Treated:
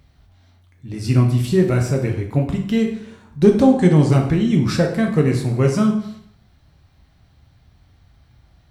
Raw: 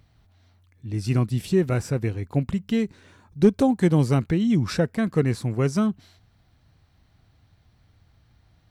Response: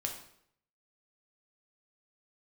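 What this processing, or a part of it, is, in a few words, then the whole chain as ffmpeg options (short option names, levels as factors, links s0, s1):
bathroom: -filter_complex "[0:a]asplit=3[s0][s1][s2];[s0]afade=t=out:st=3.59:d=0.02[s3];[s1]lowpass=f=9300:w=0.5412,lowpass=f=9300:w=1.3066,afade=t=in:st=3.59:d=0.02,afade=t=out:st=4.08:d=0.02[s4];[s2]afade=t=in:st=4.08:d=0.02[s5];[s3][s4][s5]amix=inputs=3:normalize=0[s6];[1:a]atrim=start_sample=2205[s7];[s6][s7]afir=irnorm=-1:irlink=0,volume=1.58"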